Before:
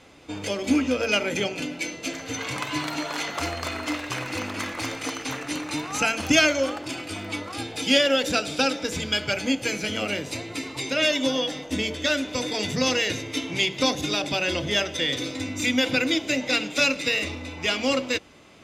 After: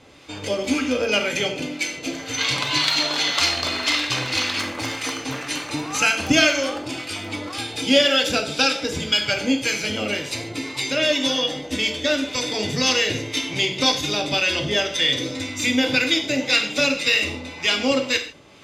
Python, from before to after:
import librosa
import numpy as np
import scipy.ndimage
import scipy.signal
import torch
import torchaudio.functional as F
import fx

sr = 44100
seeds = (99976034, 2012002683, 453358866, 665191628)

y = fx.peak_eq(x, sr, hz=4000.0, db=fx.steps((0.0, 3.0), (2.38, 14.0), (4.6, 3.5)), octaves=1.4)
y = fx.harmonic_tremolo(y, sr, hz=1.9, depth_pct=50, crossover_hz=890.0)
y = fx.rev_gated(y, sr, seeds[0], gate_ms=170, shape='falling', drr_db=4.5)
y = y * librosa.db_to_amplitude(3.0)